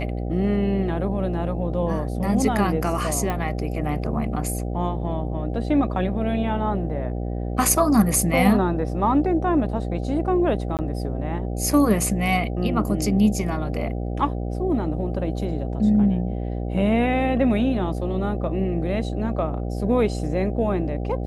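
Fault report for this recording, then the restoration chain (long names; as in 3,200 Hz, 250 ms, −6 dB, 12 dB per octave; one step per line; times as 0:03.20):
mains buzz 60 Hz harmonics 13 −27 dBFS
0:03.30: click −14 dBFS
0:10.77–0:10.79: drop-out 18 ms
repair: click removal
hum removal 60 Hz, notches 13
repair the gap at 0:10.77, 18 ms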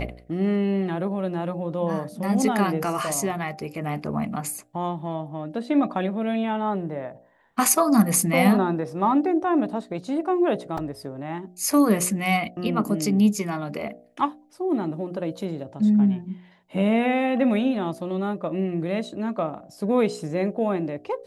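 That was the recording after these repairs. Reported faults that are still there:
none of them is left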